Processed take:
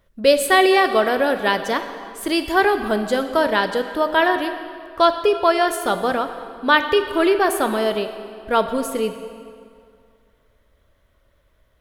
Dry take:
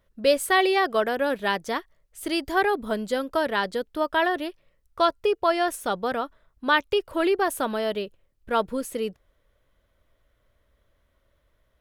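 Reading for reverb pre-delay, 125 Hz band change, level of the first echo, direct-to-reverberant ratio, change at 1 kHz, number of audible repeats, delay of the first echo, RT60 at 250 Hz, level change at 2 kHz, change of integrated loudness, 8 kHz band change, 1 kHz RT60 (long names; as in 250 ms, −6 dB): 17 ms, can't be measured, no echo audible, 8.0 dB, +6.0 dB, no echo audible, no echo audible, 2.2 s, +6.0 dB, +6.0 dB, +6.0 dB, 2.3 s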